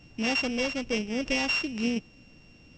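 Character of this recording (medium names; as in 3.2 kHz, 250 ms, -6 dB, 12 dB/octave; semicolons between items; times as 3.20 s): a buzz of ramps at a fixed pitch in blocks of 16 samples; µ-law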